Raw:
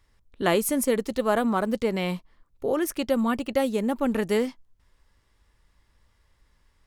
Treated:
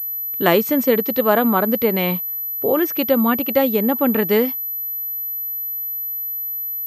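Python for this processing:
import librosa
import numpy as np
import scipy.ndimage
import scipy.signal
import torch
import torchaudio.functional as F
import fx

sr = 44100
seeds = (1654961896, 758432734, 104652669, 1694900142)

y = scipy.signal.sosfilt(scipy.signal.butter(2, 110.0, 'highpass', fs=sr, output='sos'), x)
y = fx.pwm(y, sr, carrier_hz=12000.0)
y = F.gain(torch.from_numpy(y), 7.0).numpy()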